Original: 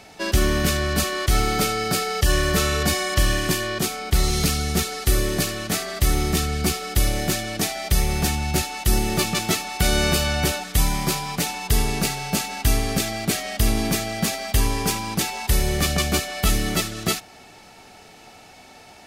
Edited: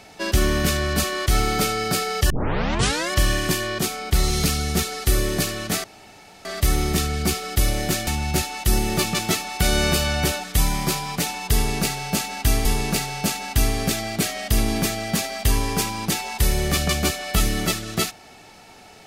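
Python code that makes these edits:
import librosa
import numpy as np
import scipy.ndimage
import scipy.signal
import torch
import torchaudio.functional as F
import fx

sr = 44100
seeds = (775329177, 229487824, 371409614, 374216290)

y = fx.edit(x, sr, fx.tape_start(start_s=2.3, length_s=0.81),
    fx.insert_room_tone(at_s=5.84, length_s=0.61),
    fx.cut(start_s=7.46, length_s=0.81),
    fx.repeat(start_s=11.74, length_s=1.11, count=2), tone=tone)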